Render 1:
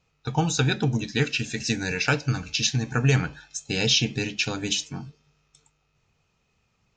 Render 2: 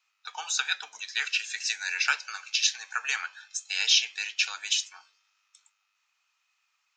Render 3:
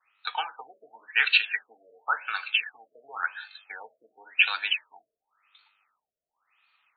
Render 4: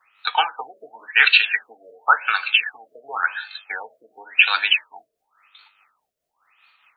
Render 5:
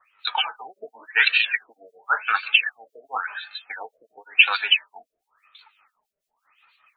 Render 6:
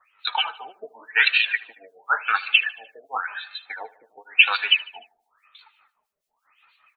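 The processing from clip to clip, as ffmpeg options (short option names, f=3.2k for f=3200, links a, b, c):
-af "highpass=f=1.1k:w=0.5412,highpass=f=1.1k:w=1.3066"
-af "afftfilt=real='re*lt(b*sr/1024,660*pow(4600/660,0.5+0.5*sin(2*PI*0.93*pts/sr)))':imag='im*lt(b*sr/1024,660*pow(4600/660,0.5+0.5*sin(2*PI*0.93*pts/sr)))':win_size=1024:overlap=0.75,volume=8dB"
-af "tremolo=f=4.8:d=0.42,alimiter=level_in=13dB:limit=-1dB:release=50:level=0:latency=1,volume=-1dB"
-filter_complex "[0:a]acrossover=split=2100[a][b];[a]aeval=exprs='val(0)*(1-1/2+1/2*cos(2*PI*6*n/s))':c=same[c];[b]aeval=exprs='val(0)*(1-1/2-1/2*cos(2*PI*6*n/s))':c=same[d];[c][d]amix=inputs=2:normalize=0,flanger=delay=1.6:depth=3.5:regen=37:speed=0.73:shape=sinusoidal,volume=6.5dB"
-af "aecho=1:1:75|150|225|300:0.0944|0.0538|0.0307|0.0175"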